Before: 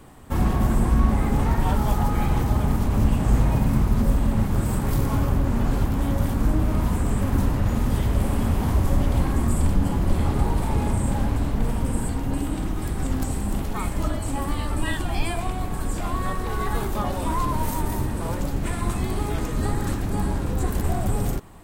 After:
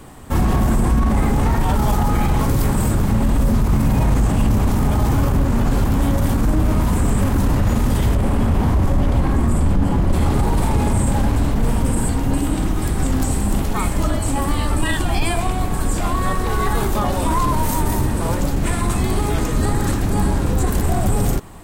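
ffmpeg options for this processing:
ffmpeg -i in.wav -filter_complex "[0:a]asettb=1/sr,asplit=3[link_01][link_02][link_03];[link_01]atrim=end=8.154[link_04];[link_02]atrim=start=8.15:end=10.13,asetpts=PTS-STARTPTS,afade=type=in:duration=0.004:curve=qsin,afade=type=out:start_time=1.976:duration=0.004:curve=qsin,highshelf=frequency=4100:gain=-10[link_05];[link_03]atrim=start=10.126[link_06];[link_04][link_05]acrossfade=duration=0.004:curve1=hsin:curve2=qsin[link_07];[link_07][link_06]acrossfade=duration=0.004:curve1=qsin:curve2=hsin,asplit=3[link_08][link_09][link_10];[link_08]atrim=end=2.412[link_11];[link_09]atrim=start=2.408:end=5.142,asetpts=PTS-STARTPTS,areverse[link_12];[link_10]atrim=start=5.138[link_13];[link_11][link_12]acrossfade=duration=0.004:curve1=hsin:curve2=hsin[link_14];[link_14][link_13]acrossfade=duration=0.004:curve1=hsin:curve2=hsin,equalizer=frequency=7300:width_type=o:width=1.4:gain=2.5,alimiter=limit=-16dB:level=0:latency=1:release=13,volume=7dB" out.wav

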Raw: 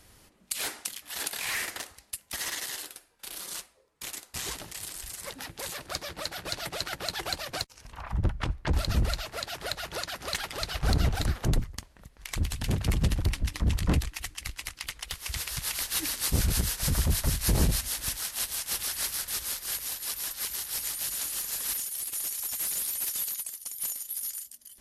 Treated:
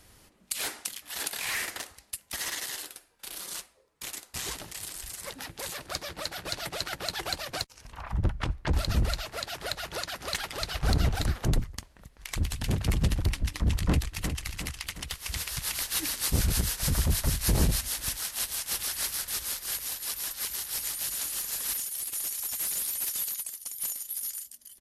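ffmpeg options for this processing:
ffmpeg -i in.wav -filter_complex "[0:a]asplit=2[link_01][link_02];[link_02]afade=type=in:start_time=13.76:duration=0.01,afade=type=out:start_time=14.42:duration=0.01,aecho=0:1:360|720|1080|1440|1800|2160:0.398107|0.199054|0.0995268|0.0497634|0.0248817|0.0124408[link_03];[link_01][link_03]amix=inputs=2:normalize=0" out.wav

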